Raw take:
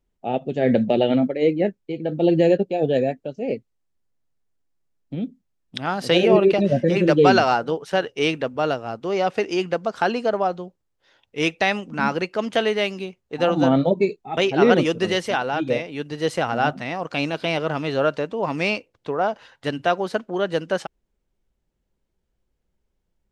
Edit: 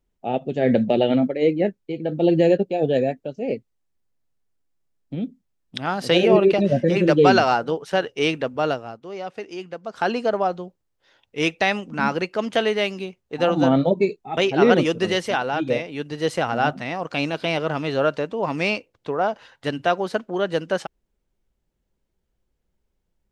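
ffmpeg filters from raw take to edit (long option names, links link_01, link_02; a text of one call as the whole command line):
ffmpeg -i in.wav -filter_complex "[0:a]asplit=3[link_01][link_02][link_03];[link_01]atrim=end=8.99,asetpts=PTS-STARTPTS,afade=type=out:start_time=8.71:duration=0.28:silence=0.298538[link_04];[link_02]atrim=start=8.99:end=9.83,asetpts=PTS-STARTPTS,volume=-10.5dB[link_05];[link_03]atrim=start=9.83,asetpts=PTS-STARTPTS,afade=type=in:duration=0.28:silence=0.298538[link_06];[link_04][link_05][link_06]concat=n=3:v=0:a=1" out.wav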